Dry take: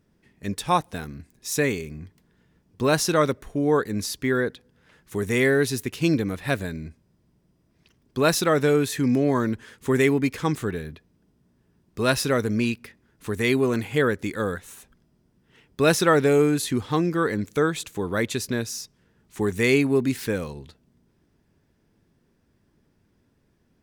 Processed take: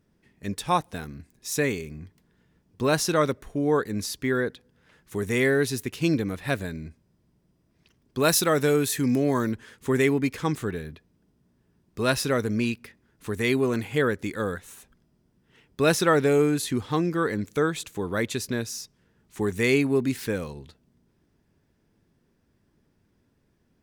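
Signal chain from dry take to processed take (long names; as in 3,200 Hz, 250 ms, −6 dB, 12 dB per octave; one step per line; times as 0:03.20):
0:08.20–0:09.52: high-shelf EQ 6,700 Hz +10 dB
level −2 dB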